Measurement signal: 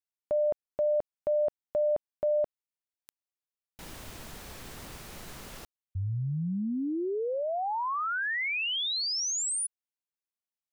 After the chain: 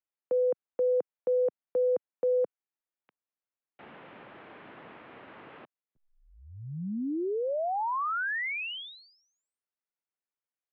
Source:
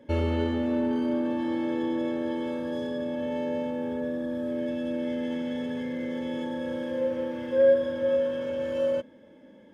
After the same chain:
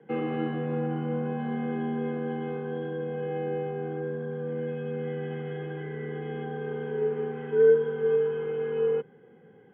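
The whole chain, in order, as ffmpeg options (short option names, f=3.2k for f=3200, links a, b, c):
-filter_complex "[0:a]acrossover=split=270 2600:gain=0.224 1 0.178[a][b][c];[a][b][c]amix=inputs=3:normalize=0,highpass=f=230:t=q:w=0.5412,highpass=f=230:t=q:w=1.307,lowpass=f=3.4k:t=q:w=0.5176,lowpass=f=3.4k:t=q:w=0.7071,lowpass=f=3.4k:t=q:w=1.932,afreqshift=-97,volume=1dB"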